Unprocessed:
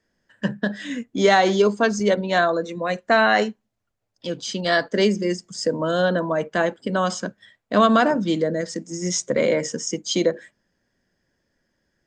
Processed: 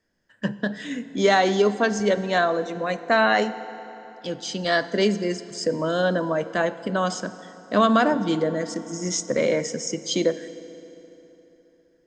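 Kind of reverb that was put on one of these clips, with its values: FDN reverb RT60 3.6 s, high-frequency decay 0.7×, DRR 13 dB; gain -2 dB

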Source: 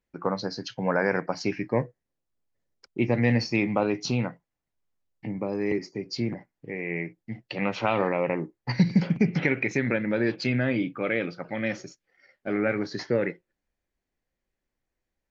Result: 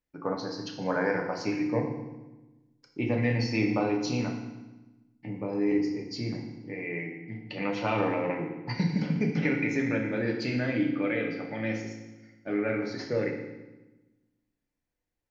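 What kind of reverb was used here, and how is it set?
FDN reverb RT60 1.1 s, low-frequency decay 1.4×, high-frequency decay 0.9×, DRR 0.5 dB; gain -6 dB

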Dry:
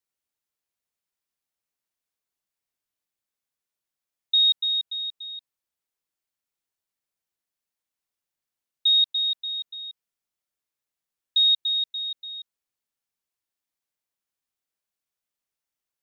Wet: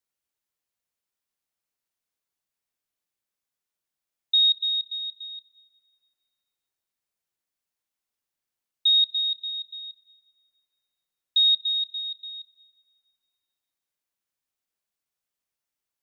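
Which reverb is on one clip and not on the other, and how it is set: plate-style reverb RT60 2.4 s, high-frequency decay 0.7×, DRR 14 dB

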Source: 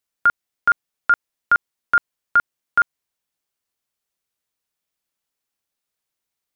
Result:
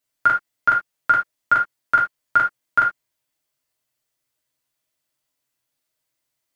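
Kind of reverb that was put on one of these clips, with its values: non-linear reverb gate 0.1 s falling, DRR -3 dB; gain -1 dB

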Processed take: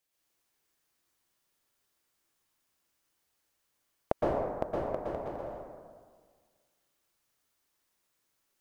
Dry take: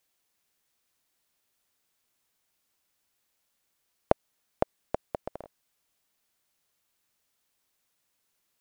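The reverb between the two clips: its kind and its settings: plate-style reverb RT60 1.7 s, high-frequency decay 0.45×, pre-delay 0.105 s, DRR -6 dB; gain -7 dB

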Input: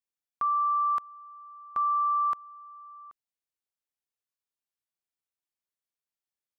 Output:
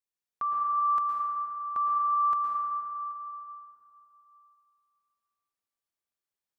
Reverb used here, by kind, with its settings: plate-style reverb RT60 2.8 s, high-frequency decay 0.4×, pre-delay 0.1 s, DRR -2.5 dB; gain -3 dB

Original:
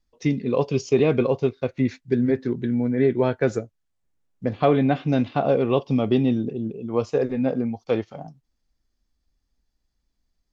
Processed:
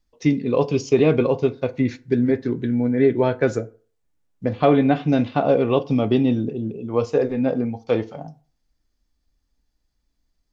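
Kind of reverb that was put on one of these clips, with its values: FDN reverb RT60 0.4 s, low-frequency decay 0.9×, high-frequency decay 0.6×, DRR 12 dB; gain +2 dB

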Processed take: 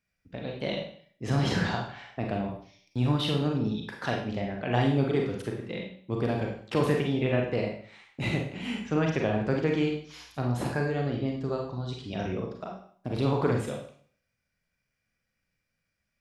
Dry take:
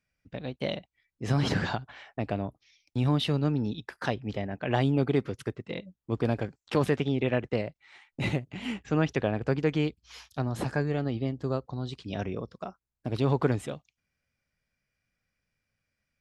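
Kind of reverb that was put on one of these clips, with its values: Schroeder reverb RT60 0.52 s, combs from 33 ms, DRR 0.5 dB; gain -1.5 dB

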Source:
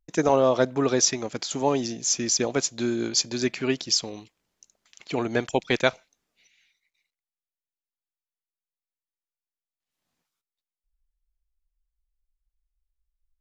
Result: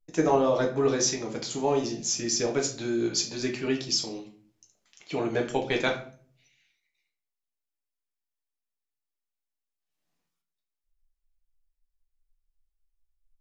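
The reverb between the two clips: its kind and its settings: shoebox room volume 42 m³, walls mixed, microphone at 0.61 m; gain -6 dB

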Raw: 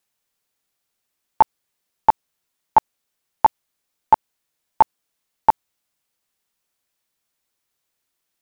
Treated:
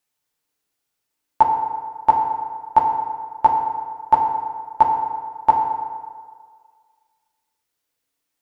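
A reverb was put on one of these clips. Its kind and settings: FDN reverb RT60 1.8 s, low-frequency decay 0.8×, high-frequency decay 0.6×, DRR 0.5 dB; gain -3.5 dB

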